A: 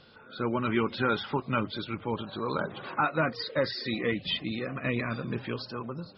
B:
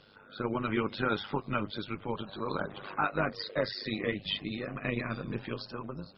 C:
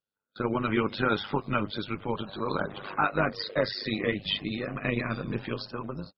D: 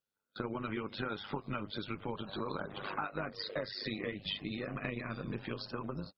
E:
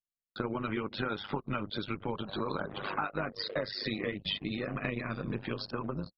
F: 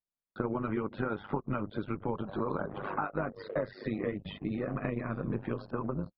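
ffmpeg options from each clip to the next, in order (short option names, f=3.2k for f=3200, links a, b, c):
-af "tremolo=f=100:d=0.71"
-af "agate=range=-40dB:threshold=-45dB:ratio=16:detection=peak,volume=4dB"
-af "acompressor=threshold=-35dB:ratio=6"
-af "anlmdn=0.01,volume=4dB"
-af "lowpass=1.3k,volume=2dB"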